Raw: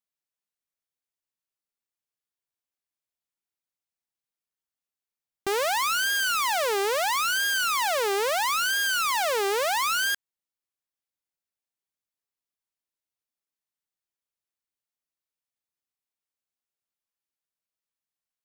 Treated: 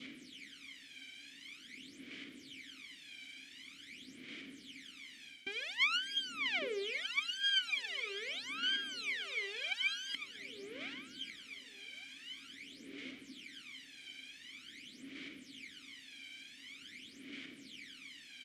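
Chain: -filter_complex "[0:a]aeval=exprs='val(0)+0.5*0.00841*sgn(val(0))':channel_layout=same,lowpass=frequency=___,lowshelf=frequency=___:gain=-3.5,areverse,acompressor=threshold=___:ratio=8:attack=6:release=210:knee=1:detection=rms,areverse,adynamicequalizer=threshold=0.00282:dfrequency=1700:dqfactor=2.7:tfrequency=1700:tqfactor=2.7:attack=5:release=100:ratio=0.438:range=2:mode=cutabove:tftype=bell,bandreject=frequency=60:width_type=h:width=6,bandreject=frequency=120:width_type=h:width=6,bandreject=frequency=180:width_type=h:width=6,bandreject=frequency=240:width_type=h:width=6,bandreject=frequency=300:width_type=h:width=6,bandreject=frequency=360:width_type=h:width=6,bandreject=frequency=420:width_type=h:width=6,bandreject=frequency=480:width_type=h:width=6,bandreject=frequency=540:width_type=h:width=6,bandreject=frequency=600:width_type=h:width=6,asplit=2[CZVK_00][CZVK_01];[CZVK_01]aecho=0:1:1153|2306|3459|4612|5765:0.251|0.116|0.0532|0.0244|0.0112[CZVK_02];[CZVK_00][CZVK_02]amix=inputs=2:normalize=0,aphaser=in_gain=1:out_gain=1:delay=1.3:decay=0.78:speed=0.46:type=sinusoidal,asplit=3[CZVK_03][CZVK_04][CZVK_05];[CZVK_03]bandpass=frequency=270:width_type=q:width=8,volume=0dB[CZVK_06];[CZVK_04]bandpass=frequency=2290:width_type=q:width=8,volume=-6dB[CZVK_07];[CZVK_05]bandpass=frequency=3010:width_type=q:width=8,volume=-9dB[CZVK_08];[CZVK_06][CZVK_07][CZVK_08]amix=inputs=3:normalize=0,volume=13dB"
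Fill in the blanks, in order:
9500, 230, -35dB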